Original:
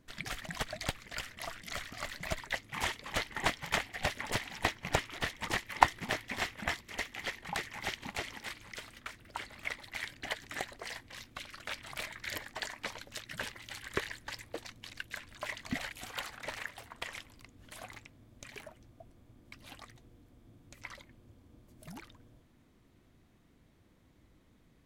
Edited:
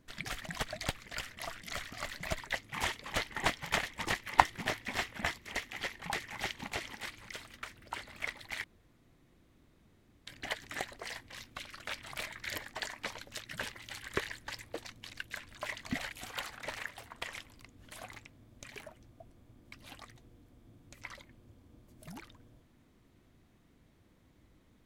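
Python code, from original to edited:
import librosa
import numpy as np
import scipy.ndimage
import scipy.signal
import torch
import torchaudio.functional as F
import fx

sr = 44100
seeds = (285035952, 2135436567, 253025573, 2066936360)

y = fx.edit(x, sr, fx.cut(start_s=3.83, length_s=1.43),
    fx.insert_room_tone(at_s=10.07, length_s=1.63), tone=tone)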